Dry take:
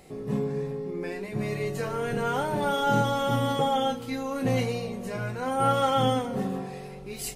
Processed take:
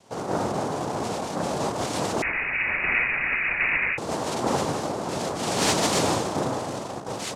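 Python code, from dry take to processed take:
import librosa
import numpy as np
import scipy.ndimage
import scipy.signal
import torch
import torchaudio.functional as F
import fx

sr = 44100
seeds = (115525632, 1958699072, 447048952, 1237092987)

p1 = fx.schmitt(x, sr, flips_db=-38.5)
p2 = x + F.gain(torch.from_numpy(p1), -4.5).numpy()
p3 = fx.noise_vocoder(p2, sr, seeds[0], bands=2)
p4 = np.clip(10.0 ** (11.5 / 20.0) * p3, -1.0, 1.0) / 10.0 ** (11.5 / 20.0)
p5 = fx.freq_invert(p4, sr, carrier_hz=2700, at=(2.22, 3.98))
y = F.gain(torch.from_numpy(p5), -1.5).numpy()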